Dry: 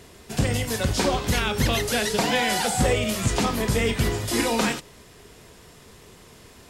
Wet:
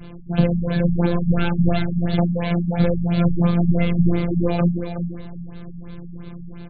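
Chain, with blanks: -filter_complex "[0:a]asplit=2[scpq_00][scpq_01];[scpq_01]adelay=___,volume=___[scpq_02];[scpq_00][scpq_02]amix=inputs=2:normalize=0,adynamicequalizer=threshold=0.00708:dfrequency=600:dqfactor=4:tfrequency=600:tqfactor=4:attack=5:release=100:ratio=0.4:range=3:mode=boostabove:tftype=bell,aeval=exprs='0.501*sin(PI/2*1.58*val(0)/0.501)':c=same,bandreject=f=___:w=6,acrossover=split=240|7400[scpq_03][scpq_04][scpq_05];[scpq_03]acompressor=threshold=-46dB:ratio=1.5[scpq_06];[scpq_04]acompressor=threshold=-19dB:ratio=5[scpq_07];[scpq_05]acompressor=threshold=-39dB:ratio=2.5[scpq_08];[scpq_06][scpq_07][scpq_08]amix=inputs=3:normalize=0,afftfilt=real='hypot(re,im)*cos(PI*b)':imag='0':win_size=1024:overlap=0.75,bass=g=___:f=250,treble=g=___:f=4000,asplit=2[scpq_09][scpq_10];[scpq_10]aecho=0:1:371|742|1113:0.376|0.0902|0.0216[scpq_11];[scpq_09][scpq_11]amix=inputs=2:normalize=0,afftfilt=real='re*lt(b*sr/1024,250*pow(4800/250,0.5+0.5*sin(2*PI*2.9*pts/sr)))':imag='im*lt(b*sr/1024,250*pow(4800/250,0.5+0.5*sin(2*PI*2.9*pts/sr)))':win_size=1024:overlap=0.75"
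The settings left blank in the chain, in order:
38, -8dB, 1900, 15, -6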